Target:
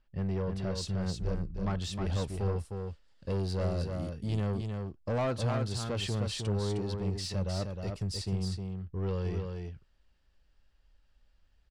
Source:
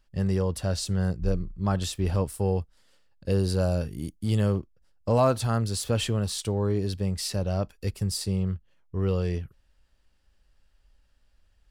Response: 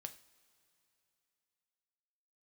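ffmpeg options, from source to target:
-af "asetnsamples=n=441:p=0,asendcmd='0.75 lowpass f 6200',lowpass=3.3k,asoftclip=type=tanh:threshold=-22.5dB,aecho=1:1:310:0.562,volume=-4dB"

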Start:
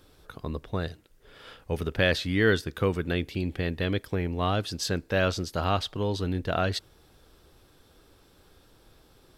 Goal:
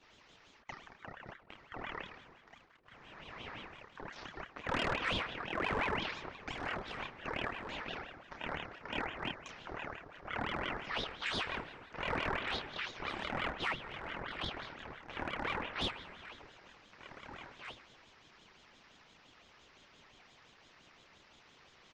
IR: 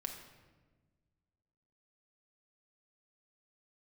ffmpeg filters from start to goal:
-filter_complex "[0:a]asplit=2[a][b];[b]acompressor=threshold=-42dB:ratio=5,volume=2dB[c];[a][c]amix=inputs=2:normalize=0,bandpass=f=5.1k:t=q:w=0.51:csg=0,deesser=0.65,asplit=2[d][e];[1:a]atrim=start_sample=2205[f];[e][f]afir=irnorm=-1:irlink=0,volume=0dB[g];[d][g]amix=inputs=2:normalize=0,asoftclip=type=hard:threshold=-20dB,asplit=2[h][i];[i]adelay=13,volume=-4.5dB[j];[h][j]amix=inputs=2:normalize=0,aecho=1:1:785:0.251,anlmdn=0.000398,asetrate=18846,aresample=44100,aeval=exprs='val(0)*sin(2*PI*1000*n/s+1000*0.8/5.8*sin(2*PI*5.8*n/s))':c=same,volume=-6dB"

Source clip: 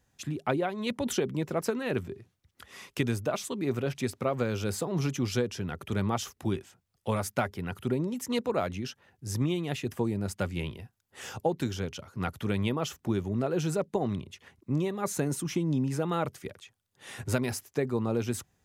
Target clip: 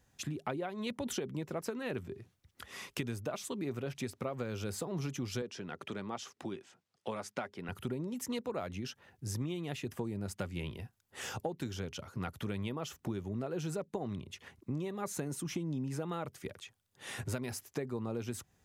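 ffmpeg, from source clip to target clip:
-filter_complex "[0:a]acompressor=threshold=-38dB:ratio=3,asettb=1/sr,asplit=3[a][b][c];[a]atrim=end=5.424[d];[b]atrim=start=5.42:end=7.69,asetpts=PTS-STARTPTS,afade=t=in:d=0.004:c=qsin,afade=t=out:st=2.266:d=0.004:c=qsin,highpass=210,lowpass=6.8k[e];[c]atrim=start=7.686[f];[d][e]acrossfade=d=0.004:c1=hsin:c2=qsin[g];[g][f]acrossfade=d=0.004:c1=qsin:c2=hsin,volume=1dB"

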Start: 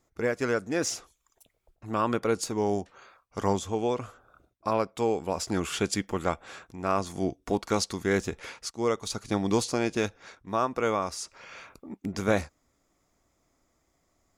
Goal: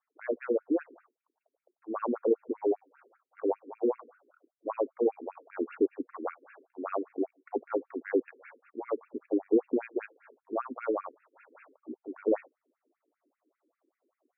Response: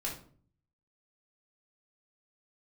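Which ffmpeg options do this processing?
-af "tiltshelf=f=680:g=9,afftfilt=real='re*between(b*sr/1024,320*pow(2000/320,0.5+0.5*sin(2*PI*5.1*pts/sr))/1.41,320*pow(2000/320,0.5+0.5*sin(2*PI*5.1*pts/sr))*1.41)':imag='im*between(b*sr/1024,320*pow(2000/320,0.5+0.5*sin(2*PI*5.1*pts/sr))/1.41,320*pow(2000/320,0.5+0.5*sin(2*PI*5.1*pts/sr))*1.41)':win_size=1024:overlap=0.75"

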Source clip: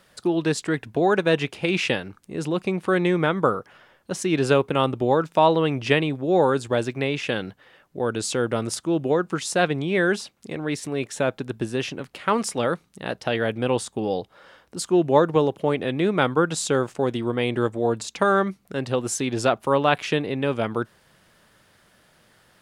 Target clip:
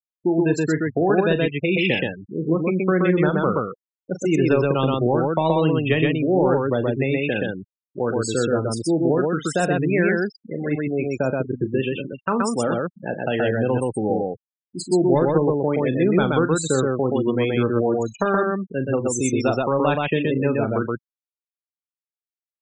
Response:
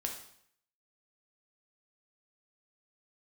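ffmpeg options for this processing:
-filter_complex "[0:a]acontrast=67,afftdn=nr=22:nf=-24,afftfilt=real='re*gte(hypot(re,im),0.1)':imag='im*gte(hypot(re,im),0.1)':win_size=1024:overlap=0.75,acrossover=split=330|3000[a][b][c];[b]acompressor=threshold=-19dB:ratio=2.5[d];[a][d][c]amix=inputs=3:normalize=0,asplit=2[e][f];[f]aecho=0:1:37.9|125.4:0.251|0.794[g];[e][g]amix=inputs=2:normalize=0,volume=-3.5dB"

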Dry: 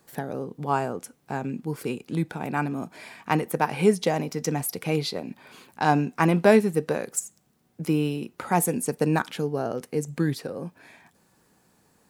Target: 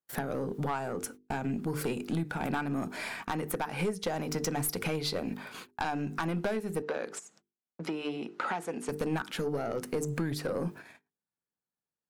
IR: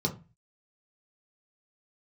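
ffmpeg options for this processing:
-filter_complex "[0:a]agate=range=-41dB:threshold=-48dB:ratio=16:detection=peak,equalizer=f=1.4k:t=o:w=0.4:g=5,bandreject=f=50:t=h:w=6,bandreject=f=100:t=h:w=6,bandreject=f=150:t=h:w=6,bandreject=f=200:t=h:w=6,bandreject=f=250:t=h:w=6,bandreject=f=300:t=h:w=6,bandreject=f=350:t=h:w=6,bandreject=f=400:t=h:w=6,bandreject=f=450:t=h:w=6,acompressor=threshold=-31dB:ratio=16,aeval=exprs='(tanh(28.2*val(0)+0.25)-tanh(0.25))/28.2':c=same,asettb=1/sr,asplit=3[a][b][c];[a]atrim=end=6.824[d];[b]atrim=start=6.82:end=8.89,asetpts=PTS-STARTPTS,afade=t=in:d=0.004:c=qsin,afade=t=out:st=2.066:d=0.004:c=qsin,highpass=280,lowpass=4.7k[e];[c]atrim=start=8.886[f];[d][e]acrossfade=d=0.004:c1=hsin:c2=qsin[g];[g][f]acrossfade=d=0.004:c1=qsin:c2=hsin,volume=6dB"

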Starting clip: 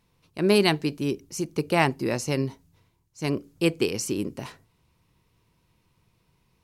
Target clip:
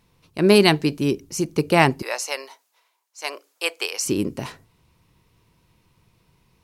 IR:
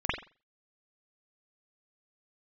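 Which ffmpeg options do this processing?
-filter_complex "[0:a]asettb=1/sr,asplit=3[a][b][c];[a]atrim=end=2.024[d];[b]atrim=start=2.02:end=4.06,asetpts=PTS-STARTPTS,afade=t=in:d=0.004:c=qsin,afade=t=out:st=2.036:d=0.004:c=qsin,highpass=f=630:w=0.5412,highpass=f=630:w=1.3066[e];[c]atrim=start=4.056[f];[d][e]acrossfade=d=0.004:c1=hsin:c2=qsin[g];[g][f]acrossfade=d=0.004:c1=qsin:c2=hsin,volume=5.5dB"

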